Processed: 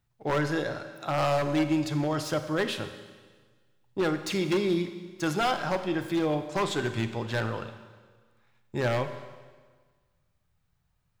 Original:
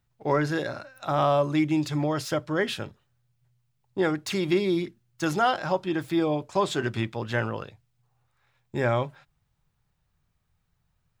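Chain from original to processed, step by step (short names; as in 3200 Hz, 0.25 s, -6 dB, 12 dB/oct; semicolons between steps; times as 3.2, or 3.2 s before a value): wavefolder -18 dBFS; Schroeder reverb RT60 1.5 s, combs from 31 ms, DRR 9 dB; gain -1.5 dB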